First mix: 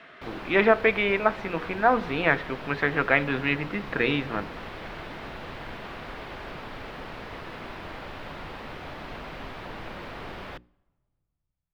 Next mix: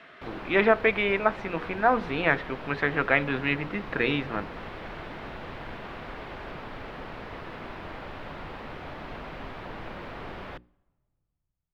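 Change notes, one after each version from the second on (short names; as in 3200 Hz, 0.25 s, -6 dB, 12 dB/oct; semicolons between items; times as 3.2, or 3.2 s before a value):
speech: send -7.0 dB; background: add high shelf 3900 Hz -8.5 dB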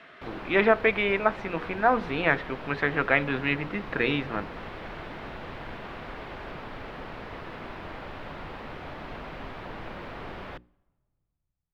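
none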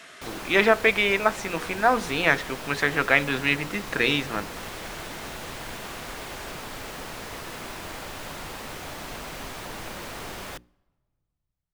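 master: remove air absorption 380 m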